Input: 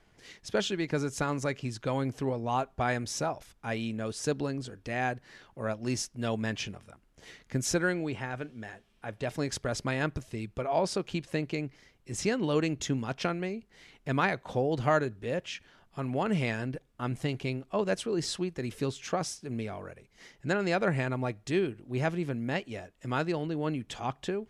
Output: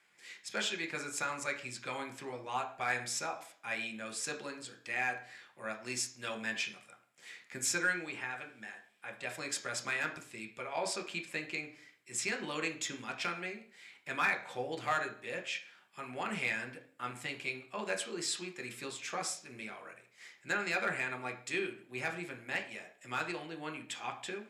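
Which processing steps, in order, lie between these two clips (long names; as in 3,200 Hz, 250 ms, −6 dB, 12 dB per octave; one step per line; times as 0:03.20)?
high-pass filter 1,400 Hz 6 dB per octave
asymmetric clip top −24 dBFS
convolution reverb RT60 0.50 s, pre-delay 3 ms, DRR 3.5 dB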